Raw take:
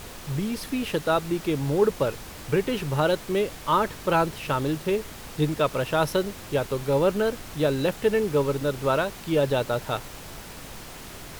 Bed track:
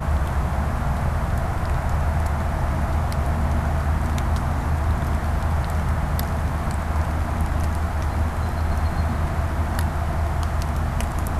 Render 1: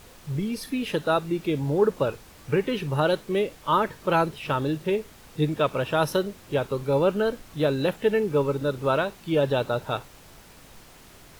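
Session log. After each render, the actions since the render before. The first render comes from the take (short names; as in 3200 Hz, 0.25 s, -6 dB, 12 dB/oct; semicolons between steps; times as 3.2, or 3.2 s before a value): noise print and reduce 9 dB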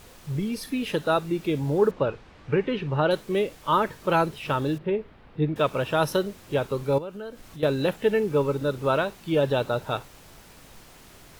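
1.91–3.11 LPF 3200 Hz; 4.78–5.56 air absorption 410 m; 6.98–7.63 compressor 2.5:1, threshold -40 dBFS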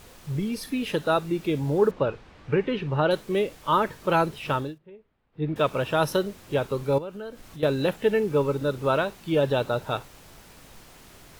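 4.56–5.51 dip -21.5 dB, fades 0.19 s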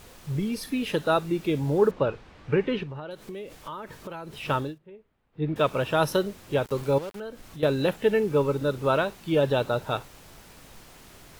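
2.83–4.37 compressor 10:1, threshold -34 dBFS; 6.65–7.2 sample gate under -39 dBFS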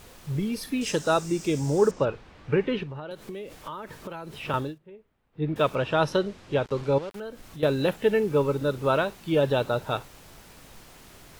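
0.81–2.05 band shelf 6600 Hz +15 dB 1 oct; 3.11–4.54 three-band squash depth 40%; 5.75–7.11 LPF 5600 Hz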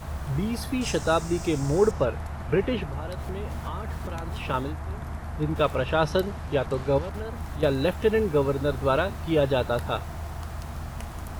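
add bed track -12 dB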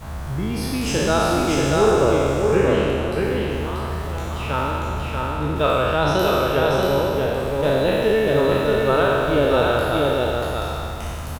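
spectral trails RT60 2.63 s; echo 0.635 s -3 dB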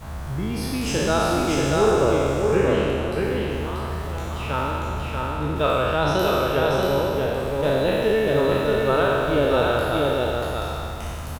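gain -2 dB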